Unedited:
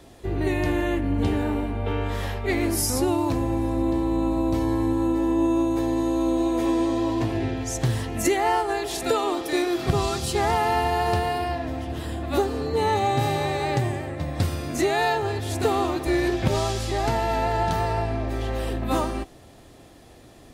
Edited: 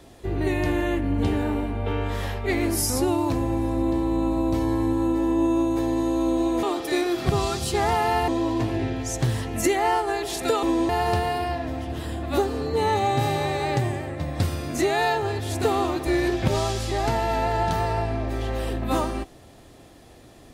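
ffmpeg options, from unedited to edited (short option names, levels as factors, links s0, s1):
-filter_complex "[0:a]asplit=5[s0][s1][s2][s3][s4];[s0]atrim=end=6.632[s5];[s1]atrim=start=9.238:end=10.892[s6];[s2]atrim=start=6.888:end=9.242[s7];[s3]atrim=start=6.628:end=6.892[s8];[s4]atrim=start=10.888[s9];[s5][s6]acrossfade=d=0.004:c1=hsin:c2=hsin[s10];[s10][s7]acrossfade=d=0.004:c1=hsin:c2=hsin[s11];[s11][s8]acrossfade=d=0.004:c1=hsin:c2=hsin[s12];[s12][s9]acrossfade=d=0.004:c1=hsin:c2=hsin"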